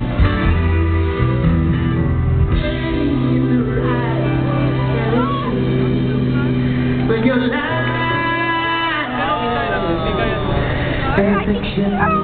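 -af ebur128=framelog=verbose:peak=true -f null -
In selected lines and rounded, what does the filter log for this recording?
Integrated loudness:
  I:         -17.1 LUFS
  Threshold: -27.1 LUFS
Loudness range:
  LRA:         0.9 LU
  Threshold: -37.2 LUFS
  LRA low:   -17.8 LUFS
  LRA high:  -16.9 LUFS
True peak:
  Peak:       -1.6 dBFS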